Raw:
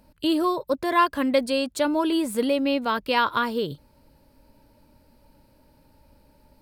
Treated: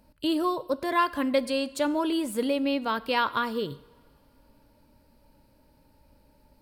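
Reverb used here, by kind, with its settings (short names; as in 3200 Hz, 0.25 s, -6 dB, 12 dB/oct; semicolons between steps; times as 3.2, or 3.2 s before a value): two-slope reverb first 0.85 s, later 3.5 s, from -21 dB, DRR 16 dB; gain -3.5 dB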